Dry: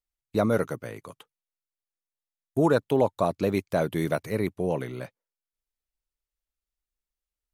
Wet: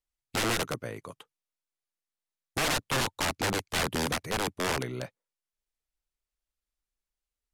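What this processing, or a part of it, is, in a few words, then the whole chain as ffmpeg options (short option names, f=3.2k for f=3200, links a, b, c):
overflowing digital effects unit: -af "aeval=exprs='(mod(12.6*val(0)+1,2)-1)/12.6':c=same,lowpass=12k"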